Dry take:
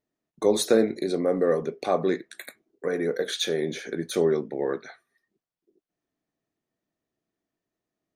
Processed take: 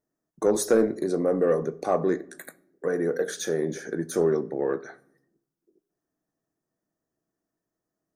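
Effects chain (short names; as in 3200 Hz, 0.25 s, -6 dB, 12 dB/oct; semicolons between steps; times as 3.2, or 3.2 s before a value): band shelf 3000 Hz -13 dB 1.2 oct; soft clip -11.5 dBFS, distortion -20 dB; on a send: reverb RT60 0.75 s, pre-delay 6 ms, DRR 16 dB; on the sum: gain +1 dB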